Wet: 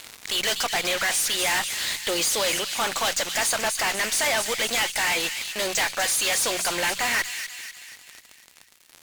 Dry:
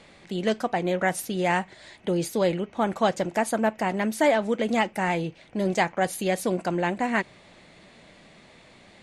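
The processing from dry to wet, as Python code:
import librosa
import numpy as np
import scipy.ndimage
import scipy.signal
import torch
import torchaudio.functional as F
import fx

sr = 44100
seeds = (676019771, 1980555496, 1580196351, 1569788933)

p1 = fx.weighting(x, sr, curve='ITU-R 468')
p2 = fx.rider(p1, sr, range_db=4, speed_s=0.5)
p3 = p1 + (p2 * librosa.db_to_amplitude(-0.5))
p4 = fx.low_shelf(p3, sr, hz=430.0, db=-10.5)
p5 = fx.fuzz(p4, sr, gain_db=33.0, gate_db=-35.0)
p6 = fx.hum_notches(p5, sr, base_hz=60, count=3)
p7 = p6 + fx.echo_wet_highpass(p6, sr, ms=246, feedback_pct=51, hz=2500.0, wet_db=-7.0, dry=0)
p8 = fx.tube_stage(p7, sr, drive_db=15.0, bias=0.35)
y = p8 * librosa.db_to_amplitude(-4.5)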